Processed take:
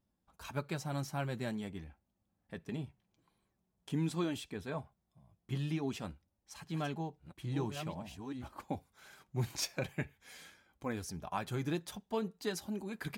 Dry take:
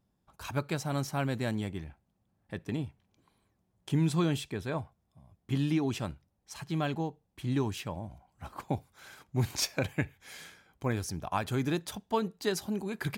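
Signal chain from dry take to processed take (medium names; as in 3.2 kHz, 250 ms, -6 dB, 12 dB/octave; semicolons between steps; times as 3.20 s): 6.06–8.48 s: chunks repeated in reverse 628 ms, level -6.5 dB; flange 0.47 Hz, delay 3.2 ms, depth 3 ms, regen -44%; trim -2 dB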